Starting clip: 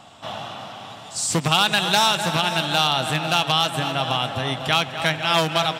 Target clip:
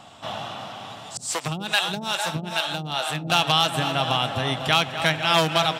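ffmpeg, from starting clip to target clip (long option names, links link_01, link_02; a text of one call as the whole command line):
ffmpeg -i in.wav -filter_complex "[0:a]asettb=1/sr,asplit=3[link_01][link_02][link_03];[link_01]atrim=end=1.174[link_04];[link_02]atrim=start=1.17:end=3.3,asetpts=PTS-STARTPTS,afade=type=in:duration=0.004:curve=qsin,afade=type=out:start_time=2.126:duration=0.004:curve=qsin,acrossover=split=460[link_05][link_06];[link_05]aeval=exprs='val(0)*(1-1/2+1/2*cos(2*PI*2.4*n/s))':channel_layout=same[link_07];[link_06]aeval=exprs='val(0)*(1-1/2-1/2*cos(2*PI*2.4*n/s))':channel_layout=same[link_08];[link_07][link_08]amix=inputs=2:normalize=0[link_09];[link_03]atrim=start=3.296[link_10];[link_04][link_09]acrossfade=duration=0.004:curve1=hsin:curve2=qsin[link_11];[link_11][link_10]acrossfade=duration=0.004:curve1=qsin:curve2=hsin" out.wav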